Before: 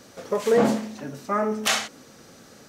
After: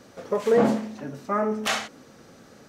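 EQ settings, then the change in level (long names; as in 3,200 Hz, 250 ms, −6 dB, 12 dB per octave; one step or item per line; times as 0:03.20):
high-shelf EQ 3,200 Hz −8 dB
0.0 dB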